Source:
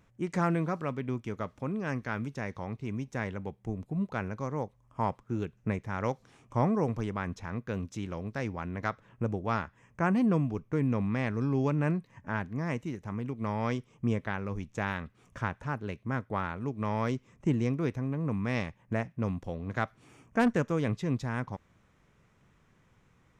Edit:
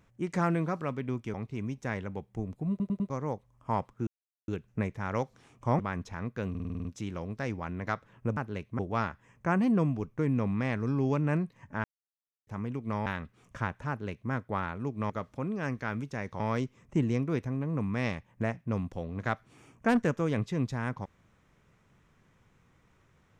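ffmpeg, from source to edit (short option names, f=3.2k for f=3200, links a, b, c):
-filter_complex "[0:a]asplit=22[a][b][c][d][e][f][g][h][i][j][k][l][m][n][o][p][q][r][s][t][u][v];[a]atrim=end=1.342[w];[b]atrim=start=2.638:end=4.102[x];[c]atrim=start=3.998:end=4.102[y];[d]atrim=start=3.998:end=4.102[z];[e]atrim=start=3.998:end=4.102[aa];[f]atrim=start=4.398:end=5.37,asetpts=PTS-STARTPTS,afade=t=out:st=0.968:d=0.004:c=hsin,apad=pad_dur=0.41[ab];[g]atrim=start=5.37:end=6.682,asetpts=PTS-STARTPTS,afade=t=in:d=0.004:c=hsin[ac];[h]atrim=start=7.098:end=7.862[ad];[i]atrim=start=7.808:end=7.862[ae];[j]atrim=start=7.808:end=7.862[af];[k]atrim=start=7.808:end=7.862[ag];[l]atrim=start=7.808:end=7.862[ah];[m]atrim=start=7.808:end=7.862[ai];[n]atrim=start=7.808:end=7.862[aj];[o]atrim=start=7.808:end=9.332[ak];[p]atrim=start=15.698:end=16.122[al];[q]atrim=start=9.328:end=12.38,asetpts=PTS-STARTPTS,afade=t=out:st=3.048:d=0.004:c=hsin[am];[r]atrim=start=12.38:end=13.01,asetpts=PTS-STARTPTS,volume=0[an];[s]atrim=start=13.01:end=13.602,asetpts=PTS-STARTPTS,afade=t=in:d=0.004:c=hsin[ao];[t]atrim=start=14.868:end=16.912[ap];[u]atrim=start=1.338:end=2.642[aq];[v]atrim=start=16.908[ar];[w][x]acrossfade=d=0.004:c1=hsin:c2=hsin[as];[as][y]acrossfade=d=0.004:c1=hsin:c2=hsin[at];[at][z]acrossfade=d=0.004:c1=hsin:c2=hsin[au];[au][aa]acrossfade=d=0.004:c1=hsin:c2=hsin[av];[ab][ac]concat=n=2:v=0:a=1[aw];[av][aw]acrossfade=d=0.004:c1=hsin:c2=hsin[ax];[ax][ad]acrossfade=d=0.004:c1=hsin:c2=hsin[ay];[ay][ae]acrossfade=d=0.004:c1=hsin:c2=hsin[az];[az][af]acrossfade=d=0.004:c1=hsin:c2=hsin[ba];[ba][ag]acrossfade=d=0.004:c1=hsin:c2=hsin[bb];[bb][ah]acrossfade=d=0.004:c1=hsin:c2=hsin[bc];[bc][ai]acrossfade=d=0.004:c1=hsin:c2=hsin[bd];[bd][aj]acrossfade=d=0.004:c1=hsin:c2=hsin[be];[be][ak]acrossfade=d=0.004:c1=hsin:c2=hsin[bf];[bf][al]acrossfade=d=0.004:c1=hsin:c2=hsin[bg];[am][an][ao]concat=n=3:v=0:a=1[bh];[bg][bh]acrossfade=d=0.004:c1=hsin:c2=hsin[bi];[bi][ap]acrossfade=d=0.004:c1=hsin:c2=hsin[bj];[bj][aq]acrossfade=d=0.004:c1=hsin:c2=hsin[bk];[bk][ar]acrossfade=d=0.004:c1=hsin:c2=hsin"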